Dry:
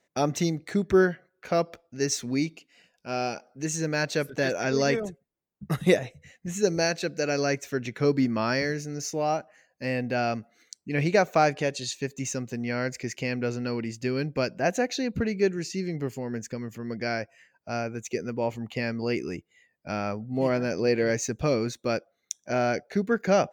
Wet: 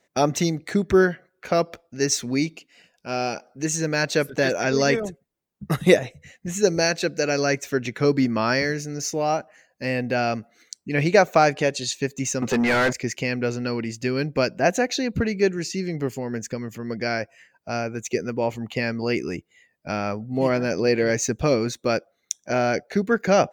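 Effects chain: harmonic-percussive split percussive +3 dB; 12.42–12.93 overdrive pedal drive 29 dB, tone 2000 Hz, clips at -14.5 dBFS; gain +3 dB

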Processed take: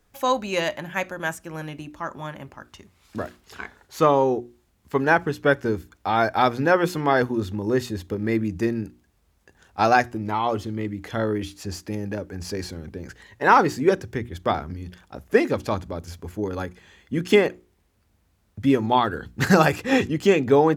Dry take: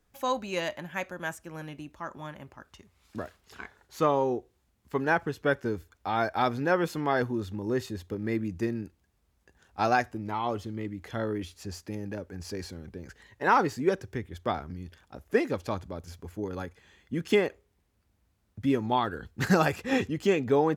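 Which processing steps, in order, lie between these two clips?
notches 60/120/180/240/300/360 Hz; gain +7 dB

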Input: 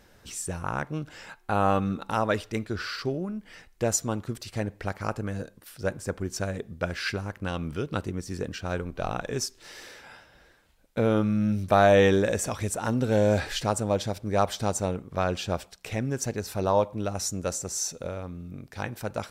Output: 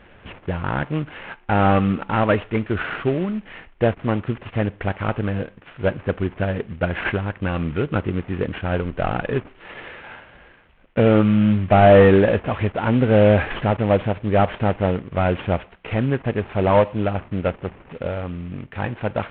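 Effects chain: CVSD 16 kbps; gain +9 dB

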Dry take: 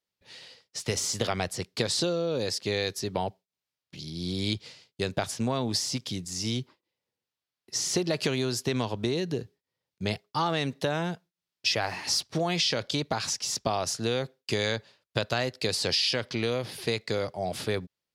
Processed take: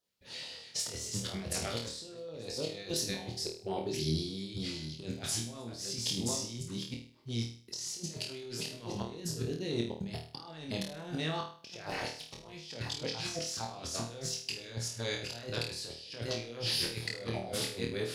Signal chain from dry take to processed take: reverse delay 0.496 s, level -10 dB; 3.28–4.1 bell 380 Hz +13.5 dB 0.23 oct; negative-ratio compressor -35 dBFS, ratio -0.5; 11.9–12.53 AM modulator 290 Hz, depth 95%; LFO notch saw down 7 Hz 560–2600 Hz; flutter echo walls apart 4.4 m, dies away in 0.45 s; gain -3.5 dB

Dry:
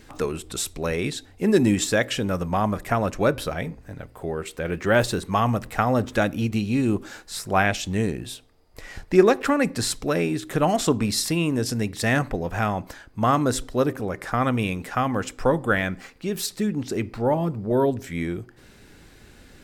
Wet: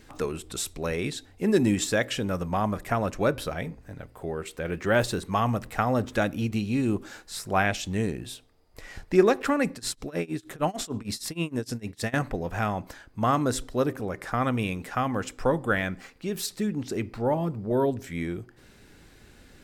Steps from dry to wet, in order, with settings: 9.73–12.14 tremolo 6.5 Hz, depth 95%; gain -3.5 dB

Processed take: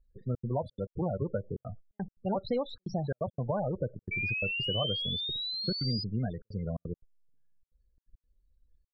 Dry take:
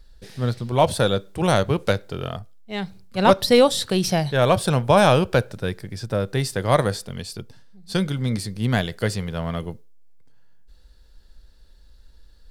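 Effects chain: gate -41 dBFS, range -15 dB; high shelf 2100 Hz -5.5 dB; compressor 4:1, threshold -25 dBFS, peak gain reduction 13 dB; loudest bins only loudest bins 16; tempo 1.4×; step gate "xxxx.xxx.x.xxx" 173 bpm -60 dB; painted sound rise, 4.11–6.04, 2300–5000 Hz -28 dBFS; air absorption 130 m; gain -3.5 dB

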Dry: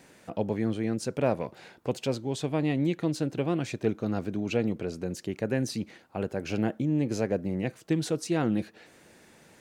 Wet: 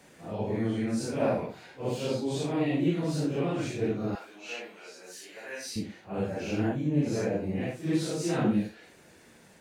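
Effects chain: phase scrambler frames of 0.2 s; 4.15–5.76 HPF 990 Hz 12 dB/oct

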